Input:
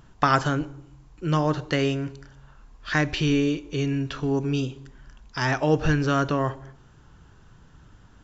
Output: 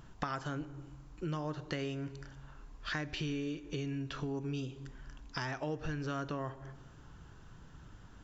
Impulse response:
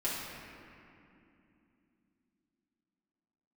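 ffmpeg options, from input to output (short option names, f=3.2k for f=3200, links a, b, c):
-filter_complex "[0:a]acompressor=threshold=-34dB:ratio=5,asplit=2[a][b];[1:a]atrim=start_sample=2205[c];[b][c]afir=irnorm=-1:irlink=0,volume=-26.5dB[d];[a][d]amix=inputs=2:normalize=0,volume=-2.5dB"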